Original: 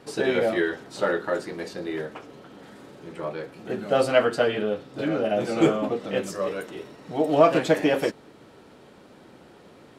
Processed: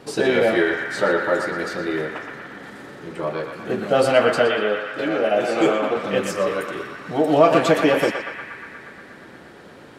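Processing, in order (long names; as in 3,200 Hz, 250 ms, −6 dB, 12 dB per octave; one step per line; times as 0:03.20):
0:04.47–0:05.97: bass and treble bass −12 dB, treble −2 dB
in parallel at −1 dB: brickwall limiter −16 dBFS, peak gain reduction 10 dB
on the sum: feedback echo with a band-pass in the loop 119 ms, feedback 82%, band-pass 1,600 Hz, level −4 dB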